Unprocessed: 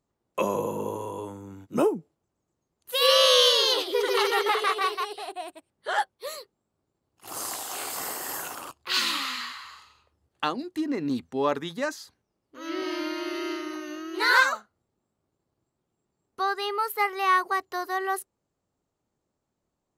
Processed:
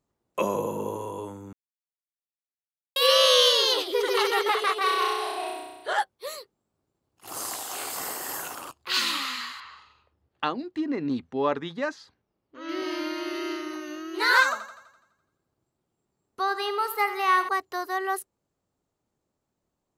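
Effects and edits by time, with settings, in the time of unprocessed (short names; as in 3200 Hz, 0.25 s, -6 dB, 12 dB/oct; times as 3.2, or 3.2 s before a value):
1.53–2.96 mute
4.83–5.93 flutter echo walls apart 5.6 m, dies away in 1.2 s
9.6–12.69 LPF 3900 Hz
14.43–17.49 thinning echo 84 ms, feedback 55%, high-pass 190 Hz, level -12 dB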